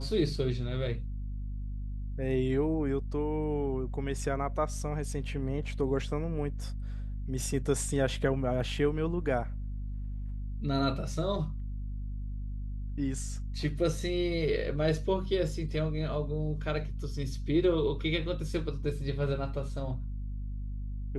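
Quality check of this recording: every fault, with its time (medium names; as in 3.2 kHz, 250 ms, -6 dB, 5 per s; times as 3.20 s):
hum 50 Hz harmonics 5 -36 dBFS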